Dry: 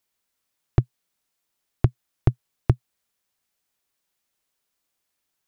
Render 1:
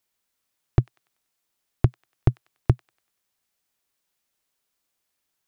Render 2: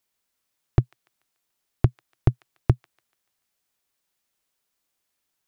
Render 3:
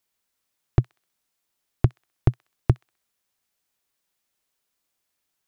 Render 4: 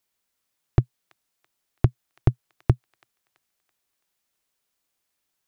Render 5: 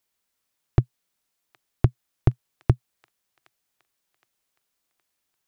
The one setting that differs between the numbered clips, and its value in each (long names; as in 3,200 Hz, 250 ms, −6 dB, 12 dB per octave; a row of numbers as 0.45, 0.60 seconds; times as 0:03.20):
delay with a high-pass on its return, delay time: 96, 145, 64, 332, 767 milliseconds